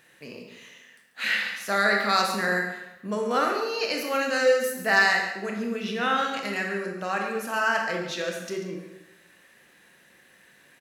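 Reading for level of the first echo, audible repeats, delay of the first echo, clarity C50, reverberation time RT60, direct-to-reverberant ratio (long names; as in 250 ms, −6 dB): −11.5 dB, 1, 140 ms, 3.0 dB, 0.95 s, 1.0 dB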